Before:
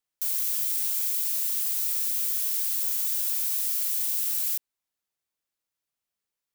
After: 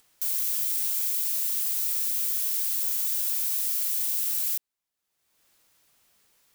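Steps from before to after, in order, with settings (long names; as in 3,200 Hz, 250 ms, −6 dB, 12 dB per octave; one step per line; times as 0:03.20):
upward compression, threshold −46 dBFS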